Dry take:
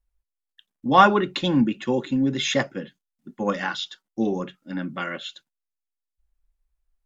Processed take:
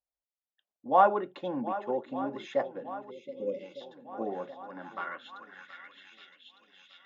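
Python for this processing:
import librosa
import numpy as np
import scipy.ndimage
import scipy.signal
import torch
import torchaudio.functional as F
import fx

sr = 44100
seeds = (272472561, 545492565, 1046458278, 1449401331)

y = fx.echo_swing(x, sr, ms=1206, ratio=1.5, feedback_pct=52, wet_db=-13.5)
y = fx.filter_sweep_bandpass(y, sr, from_hz=660.0, to_hz=3000.0, start_s=4.52, end_s=6.34, q=2.4)
y = fx.spec_box(y, sr, start_s=3.11, length_s=0.7, low_hz=600.0, high_hz=2000.0, gain_db=-29)
y = F.gain(torch.from_numpy(y), -1.0).numpy()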